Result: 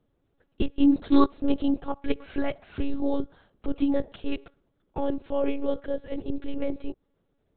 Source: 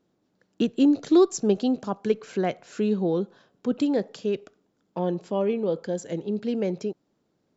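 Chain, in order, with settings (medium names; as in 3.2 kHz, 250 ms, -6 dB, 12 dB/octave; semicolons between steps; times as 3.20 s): monotone LPC vocoder at 8 kHz 280 Hz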